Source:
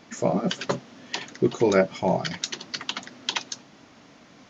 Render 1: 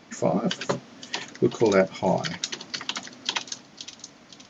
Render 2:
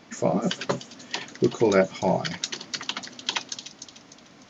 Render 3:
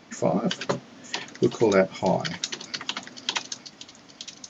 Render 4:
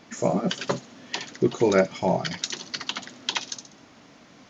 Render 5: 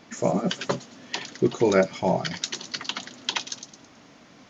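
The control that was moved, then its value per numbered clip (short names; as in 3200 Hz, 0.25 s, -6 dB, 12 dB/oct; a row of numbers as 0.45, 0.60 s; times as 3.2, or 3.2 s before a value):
thin delay, time: 519, 299, 920, 65, 108 ms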